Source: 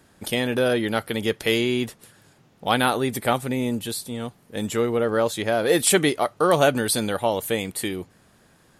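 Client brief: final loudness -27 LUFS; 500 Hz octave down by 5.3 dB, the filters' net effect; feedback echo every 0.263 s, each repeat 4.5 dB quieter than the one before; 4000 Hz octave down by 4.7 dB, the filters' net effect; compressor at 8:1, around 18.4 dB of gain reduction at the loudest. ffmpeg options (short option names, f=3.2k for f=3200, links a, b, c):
-af "equalizer=f=500:t=o:g=-6.5,equalizer=f=4k:t=o:g=-6,acompressor=threshold=-37dB:ratio=8,aecho=1:1:263|526|789|1052|1315|1578|1841|2104|2367:0.596|0.357|0.214|0.129|0.0772|0.0463|0.0278|0.0167|0.01,volume=12dB"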